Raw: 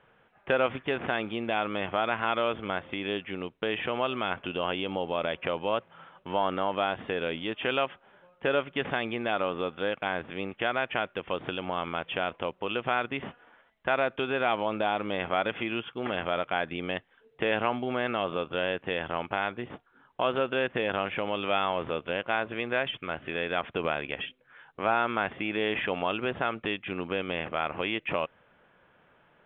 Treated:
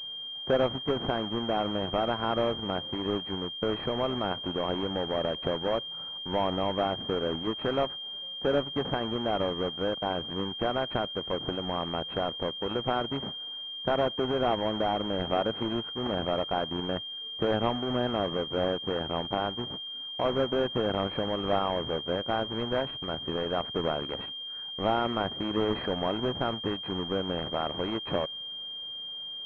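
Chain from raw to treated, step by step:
each half-wave held at its own peak
bit-depth reduction 10 bits, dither triangular
switching amplifier with a slow clock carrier 3,200 Hz
level −3.5 dB

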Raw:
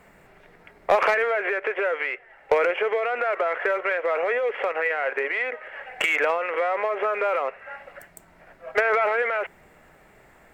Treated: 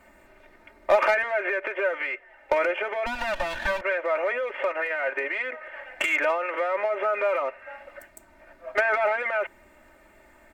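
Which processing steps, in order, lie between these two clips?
0:03.06–0:03.81: lower of the sound and its delayed copy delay 1.2 ms
comb filter 3.3 ms, depth 95%
level −4 dB

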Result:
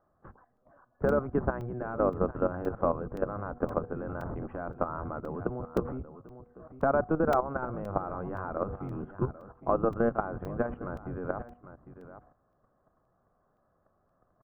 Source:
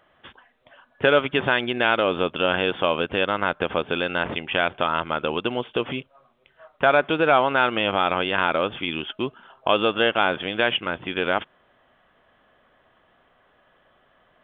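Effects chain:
sub-octave generator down 1 octave, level +2 dB
Butterworth low-pass 1,300 Hz 36 dB per octave
low-shelf EQ 71 Hz +3.5 dB
notch filter 930 Hz, Q 14
hum removal 242.6 Hz, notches 3
downward compressor 1.5 to 1, threshold −26 dBFS, peak gain reduction 5 dB
single-tap delay 800 ms −15.5 dB
output level in coarse steps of 12 dB
regular buffer underruns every 0.52 s, samples 128, zero, from 0:00.57

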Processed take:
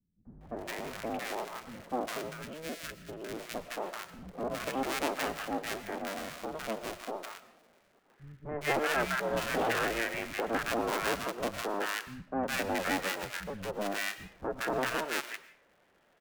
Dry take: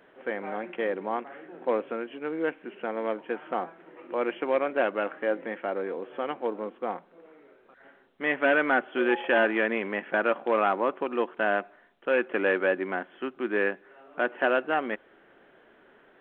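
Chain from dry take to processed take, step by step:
sub-harmonics by changed cycles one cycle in 2, inverted
0:02.17–0:03.15: parametric band 870 Hz −12 dB 1.3 octaves
in parallel at −5 dB: bit reduction 7 bits
on the sum: three-band delay without the direct sound lows, mids, highs 250/410 ms, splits 190/1,100 Hz
on a send at −13.5 dB: convolution reverb RT60 0.50 s, pre-delay 75 ms
on the sum: wow of a warped record 78 rpm, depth 100 cents
level −9 dB

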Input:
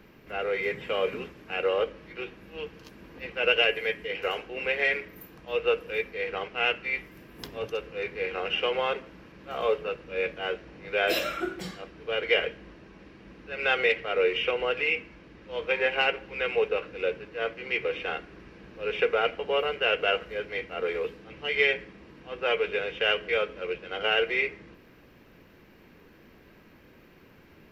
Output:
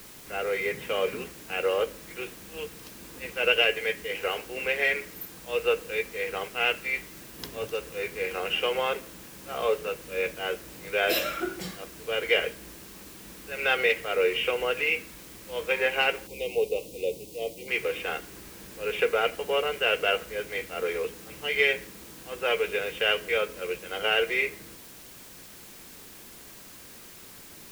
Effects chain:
high-shelf EQ 9,300 Hz +11.5 dB
bit-depth reduction 8 bits, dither triangular
0:16.27–0:17.68: Butterworth band-reject 1,500 Hz, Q 0.6

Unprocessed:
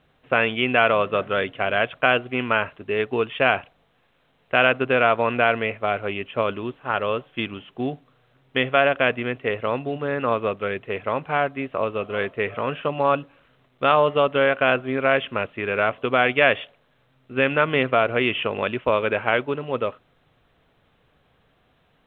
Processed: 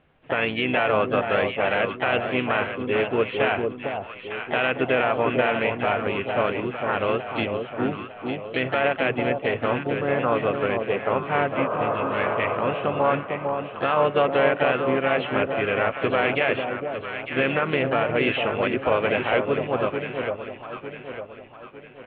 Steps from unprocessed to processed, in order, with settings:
healed spectral selection 0:11.59–0:12.54, 360–1,300 Hz after
pitch-shifted copies added −4 semitones −15 dB, +4 semitones −9 dB
brickwall limiter −10 dBFS, peak gain reduction 8 dB
Chebyshev low-pass filter 2,800 Hz, order 3
delay that swaps between a low-pass and a high-pass 452 ms, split 950 Hz, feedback 65%, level −4 dB

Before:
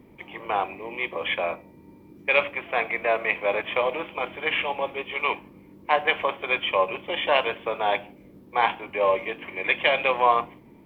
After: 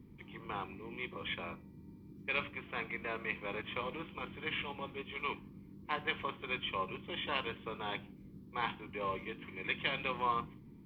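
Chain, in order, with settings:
drawn EQ curve 170 Hz 0 dB, 440 Hz −12 dB, 630 Hz −25 dB, 1,100 Hz −11 dB, 2,500 Hz −14 dB, 4,300 Hz −6 dB, 6,500 Hz −10 dB

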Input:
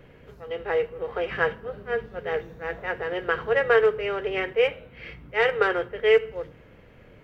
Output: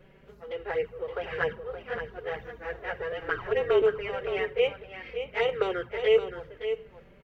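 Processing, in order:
0:03.12–0:03.82: frequency shifter −38 Hz
flanger swept by the level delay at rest 5.7 ms, full sweep at −18 dBFS
single-tap delay 570 ms −9 dB
level −2 dB

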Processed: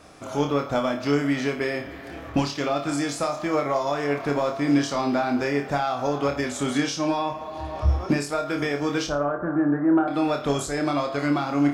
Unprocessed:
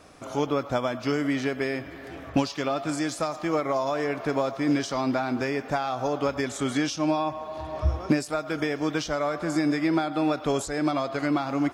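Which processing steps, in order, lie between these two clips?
0:09.07–0:10.08: Butterworth low-pass 1,700 Hz 72 dB per octave
soft clipping −12.5 dBFS, distortion −26 dB
on a send: flutter between parallel walls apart 4.8 metres, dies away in 0.3 s
on the sum: level +1.5 dB

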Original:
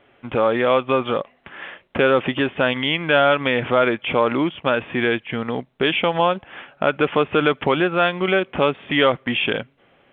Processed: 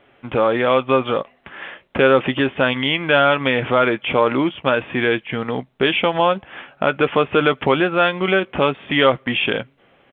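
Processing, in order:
double-tracking delay 15 ms −13 dB
level +1.5 dB

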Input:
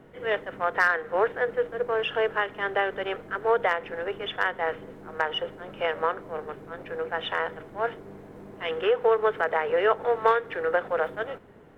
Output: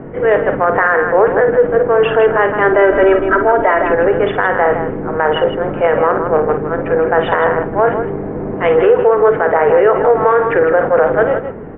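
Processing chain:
low-pass filter 2,300 Hz 24 dB per octave
tilt shelving filter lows +5.5 dB, about 1,300 Hz
hum removal 98.23 Hz, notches 2
in parallel at +2 dB: compressor whose output falls as the input rises −27 dBFS, ratio −1
0:02.72–0:03.91: on the sum: comb filter 3.1 ms, depth 79%
loudspeakers that aren't time-aligned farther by 18 metres −9 dB, 55 metres −9 dB
boost into a limiter +8.5 dB
level that may rise only so fast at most 250 dB per second
level −1 dB

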